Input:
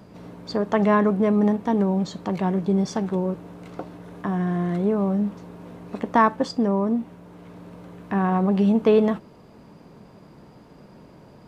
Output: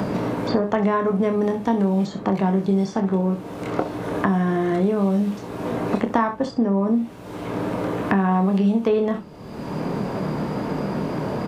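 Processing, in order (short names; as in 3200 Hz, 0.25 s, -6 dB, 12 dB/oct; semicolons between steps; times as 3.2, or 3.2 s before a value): early reflections 26 ms -6 dB, 65 ms -12.5 dB; three-band squash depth 100%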